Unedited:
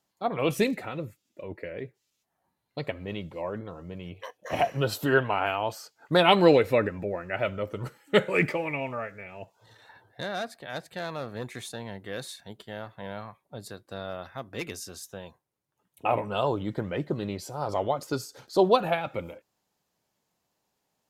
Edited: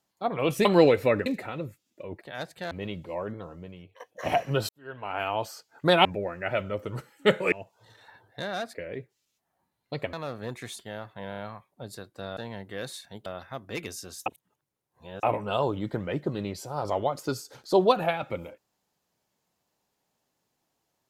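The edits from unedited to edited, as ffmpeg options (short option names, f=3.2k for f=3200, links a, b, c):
-filter_complex "[0:a]asplit=19[a][b][c][d][e][f][g][h][i][j][k][l][m][n][o][p][q][r][s];[a]atrim=end=0.652[t];[b]atrim=start=6.318:end=6.932[u];[c]atrim=start=0.648:end=1.602[v];[d]atrim=start=10.558:end=11.062[w];[e]atrim=start=2.978:end=4.27,asetpts=PTS-STARTPTS,afade=t=out:st=0.752:d=0.54:silence=0.125893[x];[f]atrim=start=4.27:end=4.96,asetpts=PTS-STARTPTS,afade=t=in:d=0.004:c=hsin:silence=0.125893,afade=t=out:st=0.686:d=0.004:c=hsin[y];[g]atrim=start=4.96:end=6.322,asetpts=PTS-STARTPTS,afade=t=in:d=0.61:c=qua[z];[h]atrim=start=6.928:end=8.402[aa];[i]atrim=start=9.328:end=10.562[ab];[j]atrim=start=1.598:end=2.982[ac];[k]atrim=start=11.058:end=11.722[ad];[l]atrim=start=12.608:end=13.142[ae];[m]atrim=start=13.108:end=13.142[af];[n]atrim=start=13.108:end=13.142[ag];[o]atrim=start=13.108:end=14.102[ah];[p]atrim=start=11.718:end=12.612[ai];[q]atrim=start=14.098:end=15.102[aj];[r]atrim=start=15.098:end=16.072,asetpts=PTS-STARTPTS,areverse[ak];[s]atrim=start=16.068[al];[t][u]acrossfade=d=0.004:c1=hsin:c2=hsin[am];[am][v]acrossfade=d=0.004:c1=hsin:c2=hsin[an];[an][w]acrossfade=d=0.004:c1=hsin:c2=hsin[ao];[x][y][z]concat=n=3:v=0:a=1[ap];[ao][ap]acrossfade=d=0.004:c1=hsin:c2=hsin[aq];[aq][aa]acrossfade=d=0.004:c1=hsin:c2=hsin[ar];[ar][ab]acrossfade=d=0.004:c1=hsin:c2=hsin[as];[as][ac]acrossfade=d=0.004:c1=hsin:c2=hsin[at];[at][ad]acrossfade=d=0.004:c1=hsin:c2=hsin[au];[au][ae]acrossfade=d=0.004:c1=hsin:c2=hsin[av];[av][af]acrossfade=d=0.004:c1=hsin:c2=hsin[aw];[aw][ag]acrossfade=d=0.004:c1=hsin:c2=hsin[ax];[ax][ah]acrossfade=d=0.004:c1=hsin:c2=hsin[ay];[ay][ai]acrossfade=d=0.004:c1=hsin:c2=hsin[az];[az][aj]acrossfade=d=0.004:c1=hsin:c2=hsin[ba];[ba][ak]acrossfade=d=0.004:c1=hsin:c2=hsin[bb];[bb][al]acrossfade=d=0.004:c1=hsin:c2=hsin"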